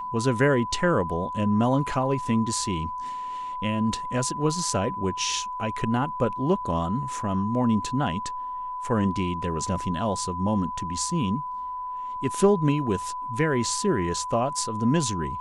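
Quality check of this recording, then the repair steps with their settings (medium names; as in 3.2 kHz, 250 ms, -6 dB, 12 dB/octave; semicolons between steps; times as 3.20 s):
whine 1 kHz -30 dBFS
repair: band-stop 1 kHz, Q 30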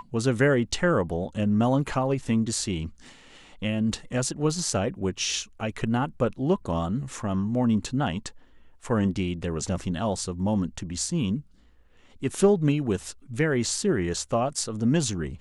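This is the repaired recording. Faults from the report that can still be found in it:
nothing left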